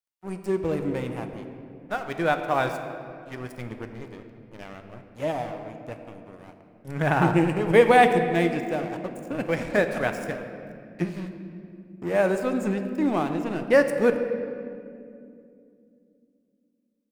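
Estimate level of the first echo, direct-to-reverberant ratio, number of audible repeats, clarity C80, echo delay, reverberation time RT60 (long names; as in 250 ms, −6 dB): no echo audible, 6.0 dB, no echo audible, 8.5 dB, no echo audible, 2.5 s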